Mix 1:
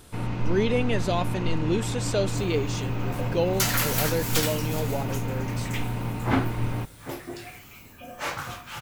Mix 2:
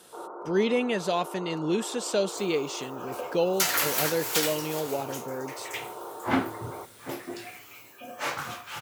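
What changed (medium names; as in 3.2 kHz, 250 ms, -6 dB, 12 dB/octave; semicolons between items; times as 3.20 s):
first sound: add Chebyshev band-pass 340–1400 Hz, order 5; master: add high-pass 160 Hz 12 dB/octave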